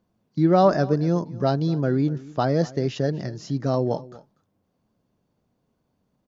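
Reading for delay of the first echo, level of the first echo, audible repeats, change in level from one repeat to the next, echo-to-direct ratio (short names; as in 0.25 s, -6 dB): 0.244 s, -20.0 dB, 1, no steady repeat, -20.0 dB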